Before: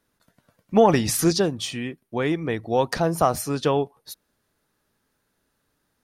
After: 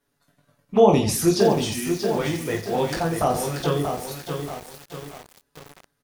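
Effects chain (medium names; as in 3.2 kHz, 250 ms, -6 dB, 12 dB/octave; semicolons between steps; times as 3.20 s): touch-sensitive flanger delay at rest 7.1 ms, full sweep at -14.5 dBFS; reverse bouncing-ball echo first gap 20 ms, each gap 1.4×, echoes 5; bit-crushed delay 633 ms, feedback 55%, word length 6-bit, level -5.5 dB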